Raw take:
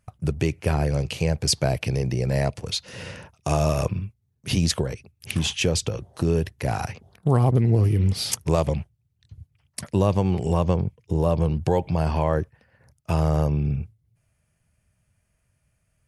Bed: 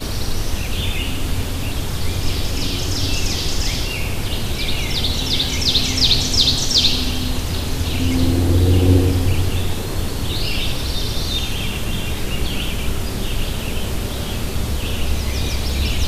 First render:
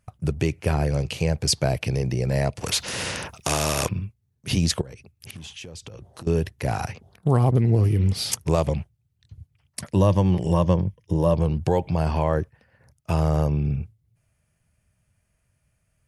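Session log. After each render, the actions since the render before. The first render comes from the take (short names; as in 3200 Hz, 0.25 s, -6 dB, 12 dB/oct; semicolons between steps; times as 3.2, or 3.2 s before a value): 2.61–3.89 spectral compressor 2:1; 4.81–6.27 compressor 8:1, threshold -36 dBFS; 9.95–11.34 ripple EQ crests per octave 1.2, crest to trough 7 dB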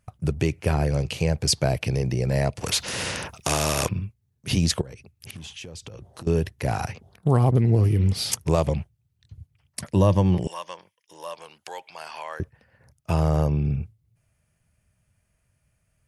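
10.47–12.4 HPF 1400 Hz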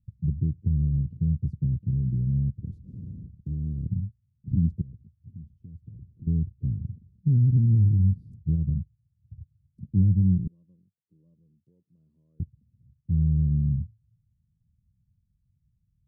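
inverse Chebyshev low-pass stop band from 730 Hz, stop band 60 dB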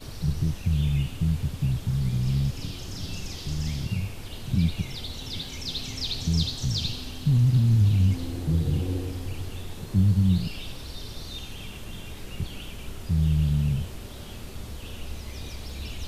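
add bed -16 dB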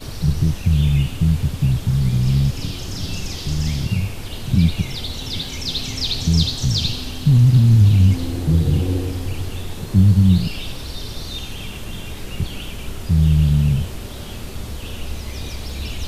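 gain +8 dB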